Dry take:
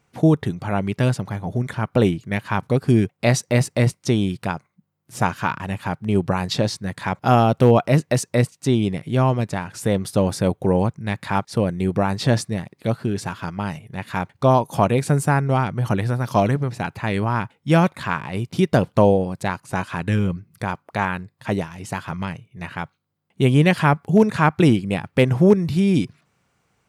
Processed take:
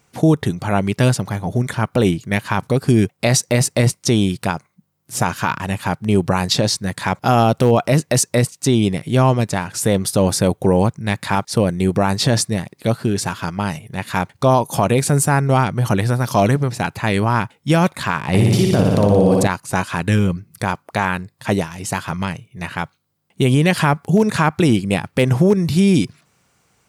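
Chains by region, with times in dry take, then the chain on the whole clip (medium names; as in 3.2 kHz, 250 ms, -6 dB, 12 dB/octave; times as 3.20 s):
18.28–19.47 s: bass shelf 430 Hz +5.5 dB + compressor with a negative ratio -16 dBFS + flutter echo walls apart 10.1 m, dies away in 1.2 s
whole clip: tone controls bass -1 dB, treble +7 dB; peak limiter -10 dBFS; trim +5 dB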